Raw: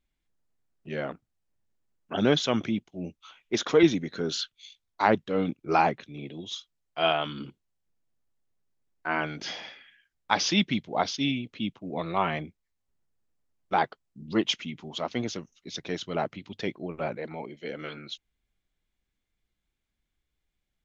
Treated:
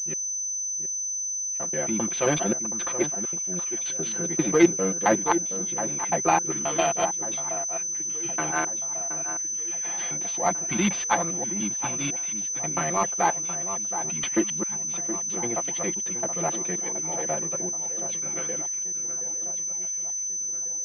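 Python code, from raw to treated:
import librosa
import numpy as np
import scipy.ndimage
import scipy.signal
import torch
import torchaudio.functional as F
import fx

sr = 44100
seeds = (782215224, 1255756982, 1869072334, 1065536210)

p1 = fx.block_reorder(x, sr, ms=133.0, group=7)
p2 = scipy.signal.sosfilt(scipy.signal.butter(2, 48.0, 'highpass', fs=sr, output='sos'), p1)
p3 = fx.low_shelf(p2, sr, hz=200.0, db=-7.5)
p4 = fx.notch(p3, sr, hz=1400.0, q=21.0)
p5 = p4 + 0.88 * np.pad(p4, (int(5.8 * sr / 1000.0), 0))[:len(p4)]
p6 = p5 + fx.echo_alternate(p5, sr, ms=722, hz=1800.0, feedback_pct=67, wet_db=-10.0, dry=0)
p7 = np.repeat(scipy.signal.resample_poly(p6, 1, 4), 4)[:len(p6)]
y = fx.pwm(p7, sr, carrier_hz=6100.0)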